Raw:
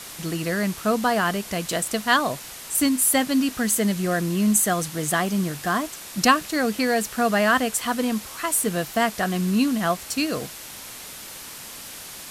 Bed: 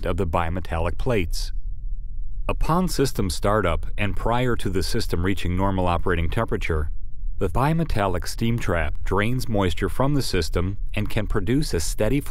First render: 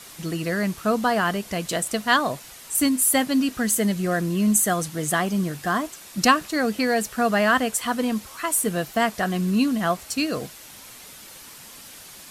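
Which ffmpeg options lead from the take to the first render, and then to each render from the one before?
-af "afftdn=nr=6:nf=-39"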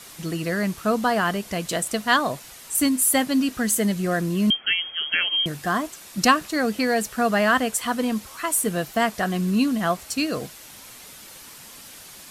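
-filter_complex "[0:a]asettb=1/sr,asplit=3[a][b][c];[a]atrim=end=4.504[d];[b]atrim=start=4.5:end=5.46,asetpts=PTS-STARTPTS,afade=t=in:d=0.004:c=qsin,afade=t=out:st=0.956:d=0.004:c=qsin,lowpass=f=2.9k:t=q:w=0.5098,lowpass=f=2.9k:t=q:w=0.6013,lowpass=f=2.9k:t=q:w=0.9,lowpass=f=2.9k:t=q:w=2.563,afreqshift=-3400[e];[c]atrim=start=5.456[f];[d][e]acrossfade=d=0.004:c1=hsin:c2=qsin[g];[g][f]acrossfade=d=0.004:c1=qsin:c2=hsin"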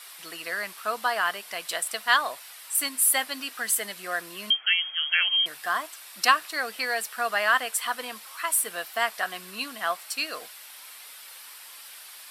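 -af "highpass=950,equalizer=f=6.6k:t=o:w=0.39:g=-9"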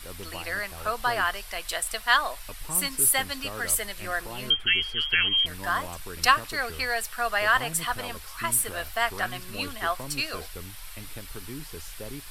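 -filter_complex "[1:a]volume=-18dB[a];[0:a][a]amix=inputs=2:normalize=0"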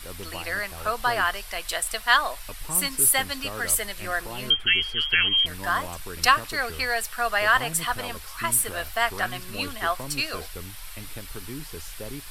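-af "volume=2dB,alimiter=limit=-3dB:level=0:latency=1"

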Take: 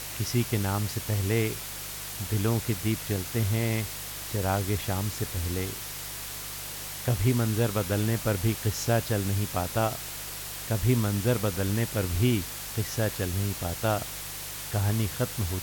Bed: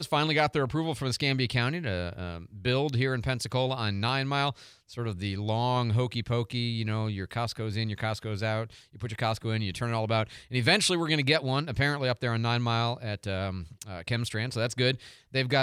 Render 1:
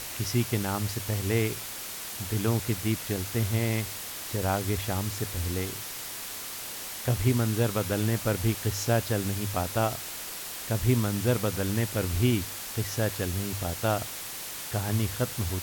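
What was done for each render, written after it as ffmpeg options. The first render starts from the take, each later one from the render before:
-af "bandreject=f=50:t=h:w=4,bandreject=f=100:t=h:w=4,bandreject=f=150:t=h:w=4"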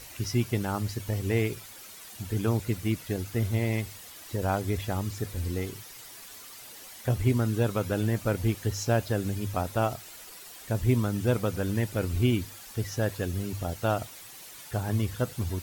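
-af "afftdn=nr=11:nf=-38"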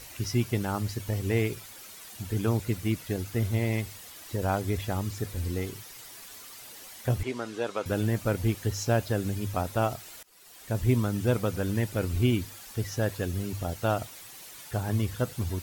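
-filter_complex "[0:a]asettb=1/sr,asplit=3[a][b][c];[a]atrim=end=7.234[d];[b]atrim=start=7.23:end=7.86,asetpts=PTS-STARTPTS,afade=t=in:d=0.004:c=qsin,afade=t=out:st=0.626:d=0.004:c=qsin,highpass=410,lowpass=6.4k[e];[c]atrim=start=7.856[f];[d][e]acrossfade=d=0.004:c1=hsin:c2=qsin[g];[g][f]acrossfade=d=0.004:c1=qsin:c2=hsin,asplit=2[h][i];[h]atrim=end=10.23,asetpts=PTS-STARTPTS,afade=t=out:st=10.226:d=0.004:c=hsin:silence=0.0630957[j];[i]atrim=start=10.23,asetpts=PTS-STARTPTS,afade=t=in:d=0.56:silence=0.0630957[k];[j][k]concat=n=2:v=0:a=1"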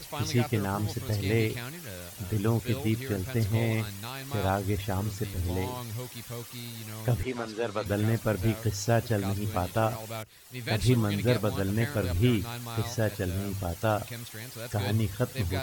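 -filter_complex "[1:a]volume=-11dB[a];[0:a][a]amix=inputs=2:normalize=0"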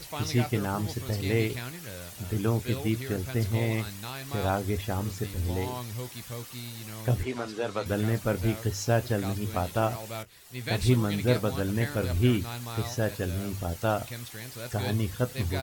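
-filter_complex "[0:a]asplit=2[a][b];[b]adelay=24,volume=-13.5dB[c];[a][c]amix=inputs=2:normalize=0"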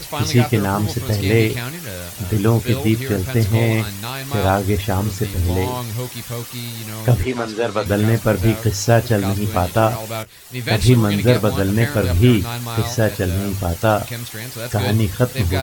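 -af "volume=11dB,alimiter=limit=-2dB:level=0:latency=1"

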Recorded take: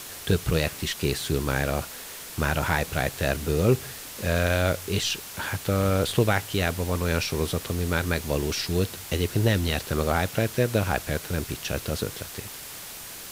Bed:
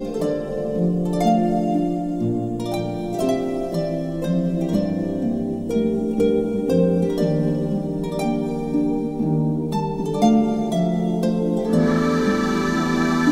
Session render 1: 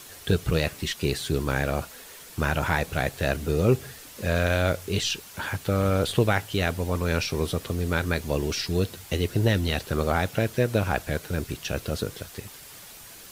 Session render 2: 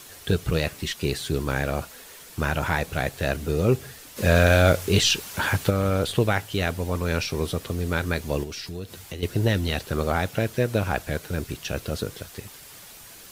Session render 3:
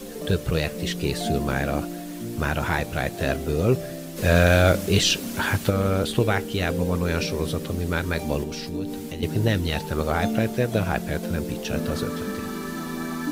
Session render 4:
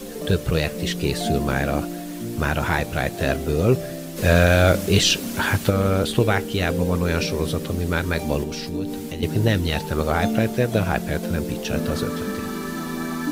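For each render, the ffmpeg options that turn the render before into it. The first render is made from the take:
-af "afftdn=nr=7:nf=-40"
-filter_complex "[0:a]asplit=3[a][b][c];[a]afade=t=out:st=4.16:d=0.02[d];[b]acontrast=78,afade=t=in:st=4.16:d=0.02,afade=t=out:st=5.69:d=0.02[e];[c]afade=t=in:st=5.69:d=0.02[f];[d][e][f]amix=inputs=3:normalize=0,asettb=1/sr,asplit=3[g][h][i];[g]atrim=end=8.434[j];[h]atrim=start=8.43:end=9.23,asetpts=PTS-STARTPTS,afade=t=in:d=0.004:c=qsin,afade=t=out:st=0.796:d=0.004:c=qsin,acompressor=threshold=-34dB:ratio=2.5:attack=3.2:release=140:knee=1:detection=peak[k];[i]atrim=start=9.226[l];[j][k]acrossfade=d=0.004:c1=hsin:c2=qsin[m];[m][l]acrossfade=d=0.004:c1=qsin:c2=hsin"
-filter_complex "[1:a]volume=-11dB[a];[0:a][a]amix=inputs=2:normalize=0"
-af "volume=2.5dB,alimiter=limit=-3dB:level=0:latency=1"

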